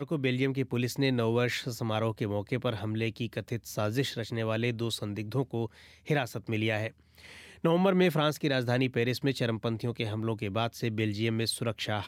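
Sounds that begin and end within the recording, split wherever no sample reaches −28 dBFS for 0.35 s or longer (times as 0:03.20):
0:06.10–0:06.88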